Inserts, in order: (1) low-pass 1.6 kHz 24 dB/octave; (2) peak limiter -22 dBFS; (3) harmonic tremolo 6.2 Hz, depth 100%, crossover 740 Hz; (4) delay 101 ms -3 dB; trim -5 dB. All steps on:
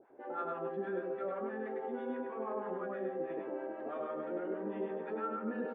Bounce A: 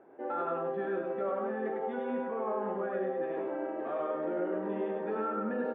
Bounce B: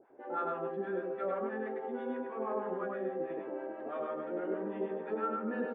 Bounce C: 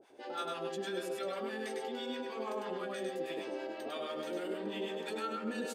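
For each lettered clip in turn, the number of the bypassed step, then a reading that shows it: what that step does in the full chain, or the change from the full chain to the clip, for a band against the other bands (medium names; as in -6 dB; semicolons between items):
3, loudness change +5.0 LU; 2, momentary loudness spread change +1 LU; 1, 2 kHz band +5.0 dB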